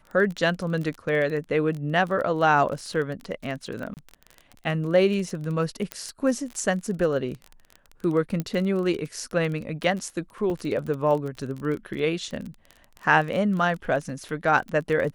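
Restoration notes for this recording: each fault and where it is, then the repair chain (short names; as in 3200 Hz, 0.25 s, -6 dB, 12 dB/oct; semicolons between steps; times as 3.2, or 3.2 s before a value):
crackle 24/s -30 dBFS
3.94–3.97 gap 29 ms
5.92 pop -13 dBFS
8.4 pop -15 dBFS
10.5 gap 2.2 ms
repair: de-click; interpolate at 3.94, 29 ms; interpolate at 10.5, 2.2 ms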